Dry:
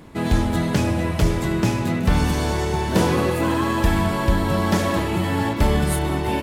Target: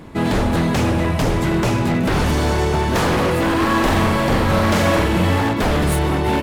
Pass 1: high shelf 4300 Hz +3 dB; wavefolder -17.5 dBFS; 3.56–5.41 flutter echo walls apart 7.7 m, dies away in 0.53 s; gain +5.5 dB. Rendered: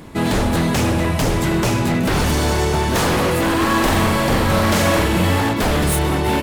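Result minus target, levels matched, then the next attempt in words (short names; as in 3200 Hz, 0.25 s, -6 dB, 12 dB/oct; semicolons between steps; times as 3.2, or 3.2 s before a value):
8000 Hz band +5.0 dB
high shelf 4300 Hz -5 dB; wavefolder -17.5 dBFS; 3.56–5.41 flutter echo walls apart 7.7 m, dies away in 0.53 s; gain +5.5 dB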